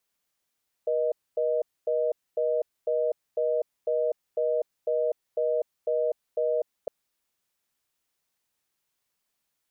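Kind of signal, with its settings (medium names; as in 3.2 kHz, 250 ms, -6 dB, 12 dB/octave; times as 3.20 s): call progress tone reorder tone, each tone -25.5 dBFS 6.01 s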